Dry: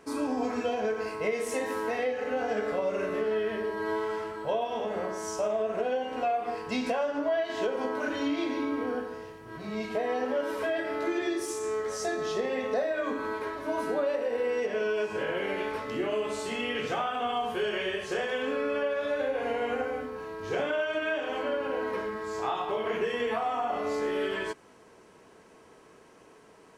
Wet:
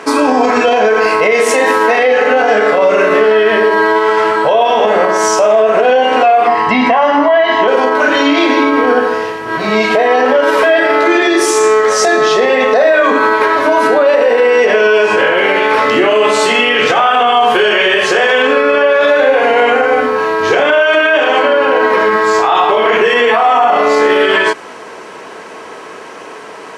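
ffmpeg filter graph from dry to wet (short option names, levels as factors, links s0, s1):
-filter_complex "[0:a]asettb=1/sr,asplit=3[s0][s1][s2];[s0]atrim=end=6.474[s3];[s1]atrim=start=6.47:end=7.68,asetpts=PTS-STARTPTS,afade=t=in:d=0.004:c=qsin,afade=t=out:st=1.206:d=0.004:c=qsin,acrossover=split=3000[s4][s5];[s5]acompressor=threshold=0.00178:ratio=4:attack=1:release=60[s6];[s4][s6]amix=inputs=2:normalize=0,highshelf=f=5800:g=-11,aecho=1:1:1:0.61,atrim=end_sample=53361[s7];[s2]atrim=start=7.676[s8];[s3][s7]acrossfade=d=0.004:c1=hsin:c2=qsin[s9];[s9][s8]acrossfade=d=0.004:c1=qsin:c2=hsin,highpass=f=810:p=1,aemphasis=mode=reproduction:type=50kf,alimiter=level_in=37.6:limit=0.891:release=50:level=0:latency=1,volume=0.891"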